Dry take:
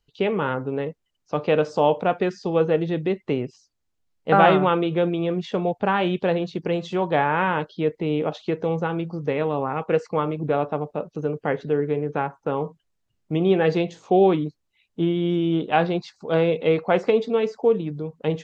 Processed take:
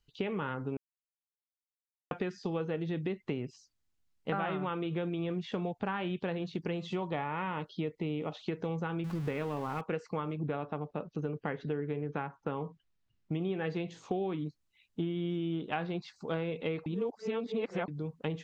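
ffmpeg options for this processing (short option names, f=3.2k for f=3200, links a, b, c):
-filter_complex "[0:a]asettb=1/sr,asplit=3[a][b][c];[a]atrim=end=6.784[d];[b]atrim=start=6.78:end=8.36,asetpts=PTS-STARTPTS,afade=t=in:d=0.004:c=qsin,afade=t=out:st=1.576:d=0.004:c=qsin,bandreject=f=1.6k:w=5.3[e];[c]atrim=start=8.356[f];[d][e]acrossfade=d=0.004:c1=hsin:c2=qsin[g];[g][f]acrossfade=d=0.004:c1=qsin:c2=hsin,asettb=1/sr,asplit=3[h][i][j];[h]atrim=end=9.044[k];[i]atrim=start=9.04:end=9.81,asetpts=PTS-STARTPTS,afade=t=in:d=0.004:c=qsin,afade=t=out:st=0.766:d=0.004:c=qsin,aeval=exprs='val(0)+0.5*0.0224*sgn(val(0))':c=same[l];[j]atrim=start=9.806[m];[k][l]acrossfade=d=0.004:c1=hsin:c2=qsin[n];[n][m]acrossfade=d=0.004:c1=qsin:c2=hsin,asettb=1/sr,asplit=3[o][p][q];[o]atrim=end=10.354[r];[p]atrim=start=10.35:end=13.32,asetpts=PTS-STARTPTS,afade=t=in:d=0.004:c=qsin,afade=t=out:st=2.966:d=0.004:c=qsin,lowpass=4.9k[s];[q]atrim=start=13.316[t];[r][s]acrossfade=d=0.004:c1=hsin:c2=qsin[u];[u][t]acrossfade=d=0.004:c1=qsin:c2=hsin,asplit=5[v][w][x][y][z];[v]atrim=end=0.77,asetpts=PTS-STARTPTS,afade=t=out:st=0.766:d=0.004:c=hsin[aa];[w]atrim=start=0.77:end=2.11,asetpts=PTS-STARTPTS,volume=0[ab];[x]atrim=start=2.11:end=16.862,asetpts=PTS-STARTPTS,afade=t=in:d=0.004:c=hsin[ac];[y]atrim=start=16.858:end=17.882,asetpts=PTS-STARTPTS,areverse[ad];[z]atrim=start=17.878[ae];[aa][ab][ac]concat=n=3:v=0:a=1[af];[af][ad]acrossfade=d=0.004:c1=hsin:c2=hsin[ag];[ag][ae]acrossfade=d=0.004:c1=hsin:c2=hsin,acrossover=split=3500[ah][ai];[ai]acompressor=threshold=-49dB:ratio=4:attack=1:release=60[aj];[ah][aj]amix=inputs=2:normalize=0,equalizer=f=570:t=o:w=1.4:g=-6.5,acompressor=threshold=-29dB:ratio=6,volume=-2dB"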